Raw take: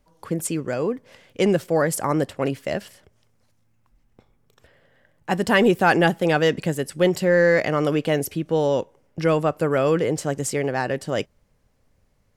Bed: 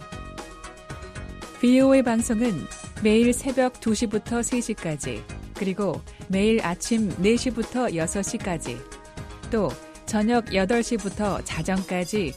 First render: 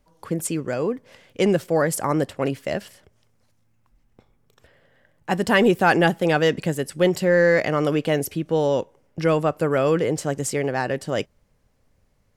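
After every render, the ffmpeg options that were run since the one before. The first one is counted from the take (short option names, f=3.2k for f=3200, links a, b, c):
-af anull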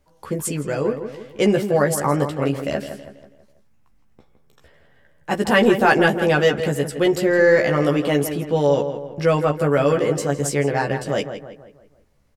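-filter_complex "[0:a]asplit=2[a][b];[b]adelay=14,volume=-3dB[c];[a][c]amix=inputs=2:normalize=0,asplit=2[d][e];[e]adelay=163,lowpass=f=2.7k:p=1,volume=-9dB,asplit=2[f][g];[g]adelay=163,lowpass=f=2.7k:p=1,volume=0.46,asplit=2[h][i];[i]adelay=163,lowpass=f=2.7k:p=1,volume=0.46,asplit=2[j][k];[k]adelay=163,lowpass=f=2.7k:p=1,volume=0.46,asplit=2[l][m];[m]adelay=163,lowpass=f=2.7k:p=1,volume=0.46[n];[d][f][h][j][l][n]amix=inputs=6:normalize=0"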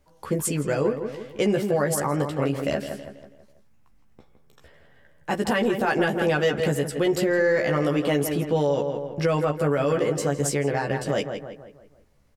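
-af "alimiter=limit=-13.5dB:level=0:latency=1:release=168"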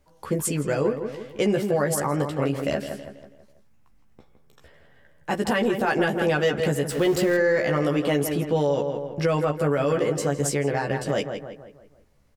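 -filter_complex "[0:a]asettb=1/sr,asplit=3[a][b][c];[a]atrim=end=6.894[d];[b]atrim=start=6.89:end=7.37,asetpts=PTS-STARTPTS,afade=t=in:d=0.004:c=qsin,afade=t=out:st=0.476:d=0.004:c=qsin,aeval=exprs='val(0)+0.5*0.0266*sgn(val(0))':c=same[e];[c]atrim=start=7.366[f];[d][e]acrossfade=d=0.004:c1=hsin:c2=qsin[g];[g][f]acrossfade=d=0.004:c1=qsin:c2=hsin"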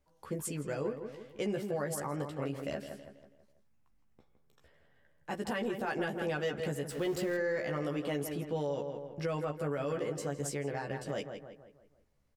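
-af "volume=-12dB"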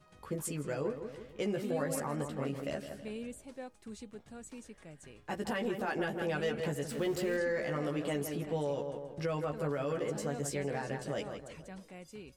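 -filter_complex "[1:a]volume=-23.5dB[a];[0:a][a]amix=inputs=2:normalize=0"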